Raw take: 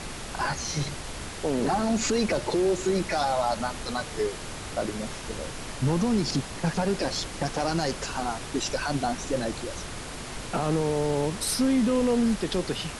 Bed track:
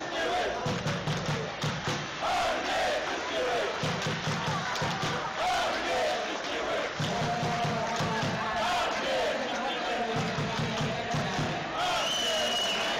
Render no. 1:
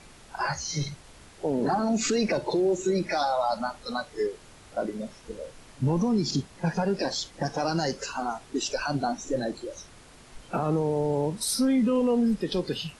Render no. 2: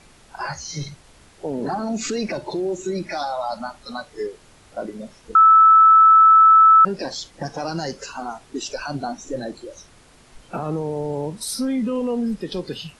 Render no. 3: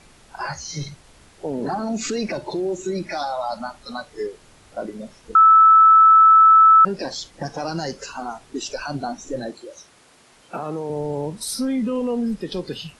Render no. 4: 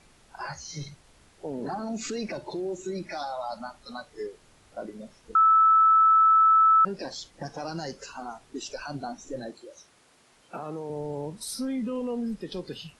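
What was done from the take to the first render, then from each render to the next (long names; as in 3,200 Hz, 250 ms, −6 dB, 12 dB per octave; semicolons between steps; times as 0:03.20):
noise reduction from a noise print 14 dB
0:02.27–0:03.99: notch filter 480 Hz, Q 5.4; 0:05.35–0:06.85: beep over 1,310 Hz −7.5 dBFS
0:09.50–0:10.90: high-pass filter 310 Hz 6 dB per octave
level −7.5 dB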